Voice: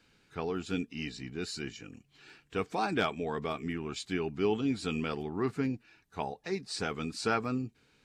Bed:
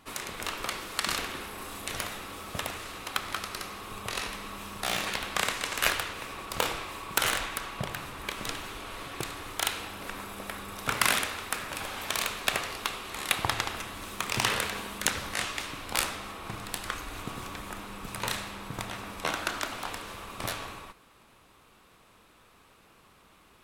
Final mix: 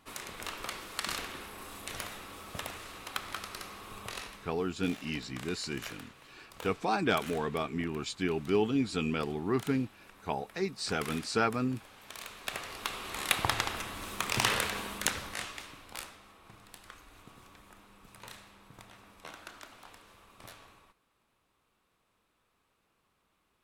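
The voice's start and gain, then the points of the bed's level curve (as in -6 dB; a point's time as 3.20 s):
4.10 s, +1.5 dB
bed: 4.06 s -5.5 dB
4.71 s -18 dB
11.98 s -18 dB
13.05 s -1 dB
14.91 s -1 dB
16.18 s -16.5 dB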